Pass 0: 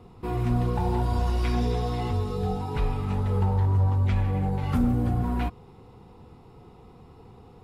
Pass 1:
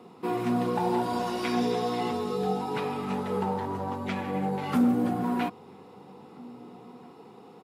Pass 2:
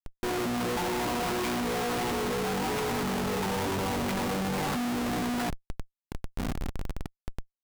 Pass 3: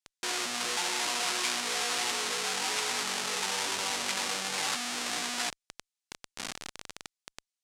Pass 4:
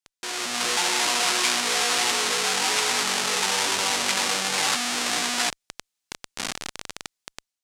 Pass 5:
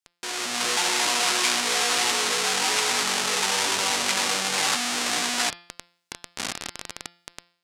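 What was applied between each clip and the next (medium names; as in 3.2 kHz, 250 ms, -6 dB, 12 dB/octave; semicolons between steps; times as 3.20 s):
high-pass 190 Hz 24 dB/octave; echo from a far wall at 280 m, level -23 dB; trim +3 dB
Chebyshev shaper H 6 -31 dB, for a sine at -13.5 dBFS; Schmitt trigger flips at -39.5 dBFS
frequency weighting ITU-R 468; trim -3 dB
level rider gain up to 8 dB
de-hum 173.4 Hz, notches 31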